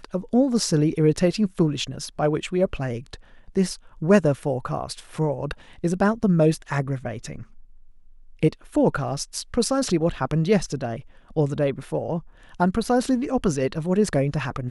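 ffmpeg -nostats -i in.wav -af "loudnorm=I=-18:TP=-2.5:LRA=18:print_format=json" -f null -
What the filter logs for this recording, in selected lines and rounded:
"input_i" : "-23.8",
"input_tp" : "-5.1",
"input_lra" : "2.3",
"input_thresh" : "-34.2",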